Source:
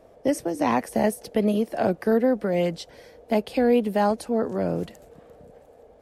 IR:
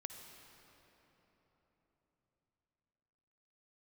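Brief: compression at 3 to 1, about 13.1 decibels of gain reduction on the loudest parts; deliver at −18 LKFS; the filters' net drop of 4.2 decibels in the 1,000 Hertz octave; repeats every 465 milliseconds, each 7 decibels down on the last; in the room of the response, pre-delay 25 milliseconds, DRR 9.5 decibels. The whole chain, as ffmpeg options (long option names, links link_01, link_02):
-filter_complex "[0:a]equalizer=frequency=1000:width_type=o:gain=-6,acompressor=threshold=-35dB:ratio=3,aecho=1:1:465|930|1395|1860|2325:0.447|0.201|0.0905|0.0407|0.0183,asplit=2[link_01][link_02];[1:a]atrim=start_sample=2205,adelay=25[link_03];[link_02][link_03]afir=irnorm=-1:irlink=0,volume=-6dB[link_04];[link_01][link_04]amix=inputs=2:normalize=0,volume=17.5dB"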